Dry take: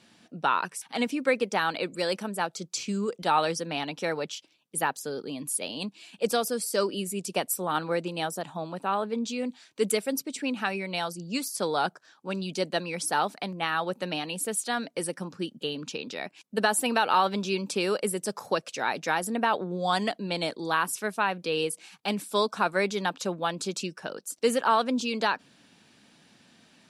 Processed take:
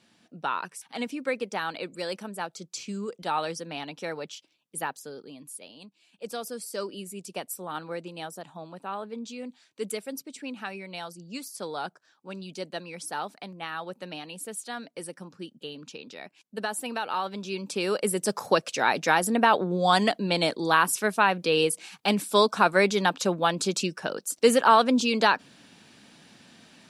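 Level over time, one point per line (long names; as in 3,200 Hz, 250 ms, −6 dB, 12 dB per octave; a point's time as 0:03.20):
0:04.85 −4.5 dB
0:05.98 −16 dB
0:06.47 −7 dB
0:17.32 −7 dB
0:18.31 +5 dB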